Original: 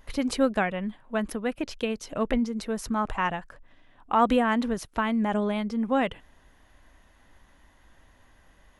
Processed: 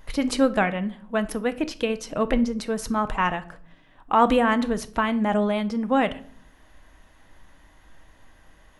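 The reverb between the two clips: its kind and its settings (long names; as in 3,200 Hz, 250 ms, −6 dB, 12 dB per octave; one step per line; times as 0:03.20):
rectangular room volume 590 cubic metres, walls furnished, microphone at 0.58 metres
level +3.5 dB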